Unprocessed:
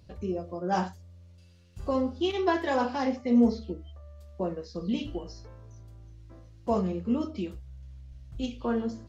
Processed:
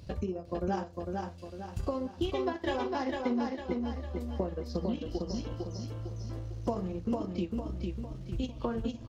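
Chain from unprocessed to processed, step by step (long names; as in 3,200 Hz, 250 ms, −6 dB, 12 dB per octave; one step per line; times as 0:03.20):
downward compressor 5 to 1, threshold −40 dBFS, peak gain reduction 20 dB
transient designer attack +3 dB, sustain −11 dB
repeating echo 453 ms, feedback 45%, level −3.5 dB
level +7 dB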